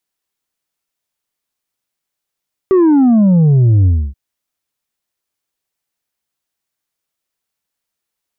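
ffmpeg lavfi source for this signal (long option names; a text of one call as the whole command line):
ffmpeg -f lavfi -i "aevalsrc='0.447*clip((1.43-t)/0.28,0,1)*tanh(1.58*sin(2*PI*390*1.43/log(65/390)*(exp(log(65/390)*t/1.43)-1)))/tanh(1.58)':duration=1.43:sample_rate=44100" out.wav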